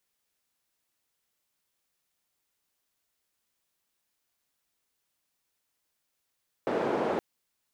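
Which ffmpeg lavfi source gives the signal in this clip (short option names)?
-f lavfi -i "anoisesrc=c=white:d=0.52:r=44100:seed=1,highpass=f=320,lowpass=f=510,volume=-4.8dB"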